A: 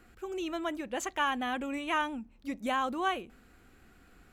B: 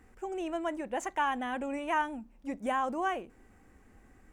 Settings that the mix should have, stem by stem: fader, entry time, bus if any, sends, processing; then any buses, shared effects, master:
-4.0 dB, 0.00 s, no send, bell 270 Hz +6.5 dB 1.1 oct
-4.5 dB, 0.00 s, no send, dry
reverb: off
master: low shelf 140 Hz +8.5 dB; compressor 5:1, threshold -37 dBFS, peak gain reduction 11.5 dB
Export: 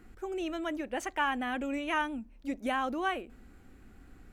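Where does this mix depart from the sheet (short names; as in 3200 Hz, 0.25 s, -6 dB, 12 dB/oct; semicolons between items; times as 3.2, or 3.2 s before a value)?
stem B: polarity flipped; master: missing compressor 5:1, threshold -37 dBFS, peak gain reduction 11.5 dB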